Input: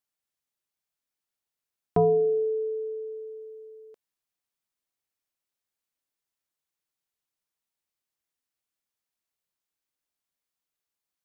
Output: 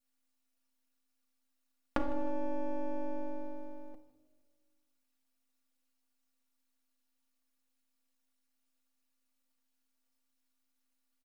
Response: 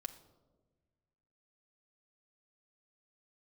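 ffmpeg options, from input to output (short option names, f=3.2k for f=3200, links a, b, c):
-filter_complex "[0:a]lowshelf=f=290:g=-6,aeval=exprs='val(0)*sin(2*PI*130*n/s)':c=same,adynamicequalizer=threshold=0.00891:dfrequency=760:dqfactor=0.76:tfrequency=760:tqfactor=0.76:attack=5:release=100:ratio=0.375:range=3:mode=boostabove:tftype=bell,acompressor=threshold=-37dB:ratio=6,aecho=1:1:4.3:0.74,aeval=exprs='max(val(0),0)':c=same,aecho=1:1:155|310|465:0.1|0.039|0.0152[a];[1:a]atrim=start_sample=2205[b];[a][b]afir=irnorm=-1:irlink=0,volume=11dB"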